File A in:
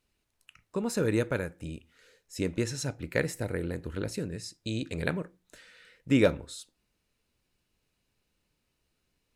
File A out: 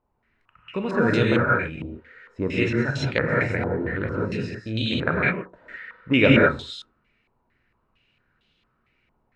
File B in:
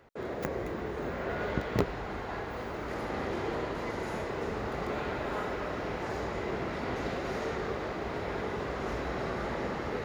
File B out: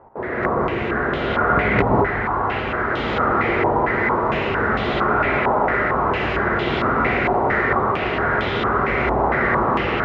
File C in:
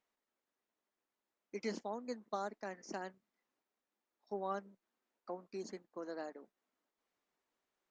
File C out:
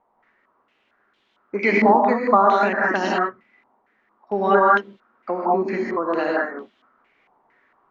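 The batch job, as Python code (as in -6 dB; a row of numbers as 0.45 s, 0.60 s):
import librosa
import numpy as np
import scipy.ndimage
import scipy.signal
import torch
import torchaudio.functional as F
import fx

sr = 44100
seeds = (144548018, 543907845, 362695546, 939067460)

y = fx.rev_gated(x, sr, seeds[0], gate_ms=230, shape='rising', drr_db=-3.5)
y = fx.filter_held_lowpass(y, sr, hz=4.4, low_hz=910.0, high_hz=3300.0)
y = y * 10.0 ** (-3 / 20.0) / np.max(np.abs(y))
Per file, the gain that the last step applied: +2.5 dB, +7.0 dB, +17.5 dB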